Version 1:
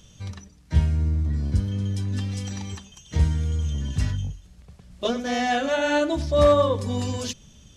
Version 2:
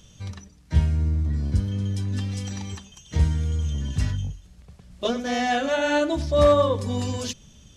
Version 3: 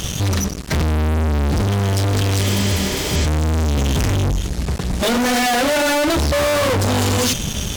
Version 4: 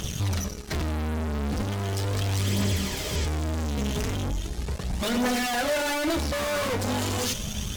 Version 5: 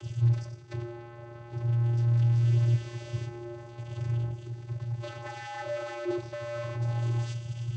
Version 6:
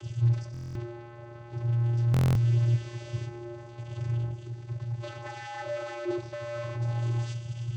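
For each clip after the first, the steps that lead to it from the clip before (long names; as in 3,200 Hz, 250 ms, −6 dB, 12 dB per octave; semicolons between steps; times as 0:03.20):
no processing that can be heard
fuzz pedal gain 50 dB, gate −53 dBFS; healed spectral selection 0:02.45–0:03.23, 230–8,200 Hz before; tape wow and flutter 23 cents; level −3 dB
tuned comb filter 210 Hz, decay 1.2 s, mix 70%; phase shifter 0.38 Hz, delay 4.9 ms, feedback 37%
channel vocoder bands 16, square 118 Hz; on a send at −19 dB: convolution reverb RT60 0.40 s, pre-delay 4 ms
buffer that repeats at 0:00.52/0:02.12, samples 1,024, times 9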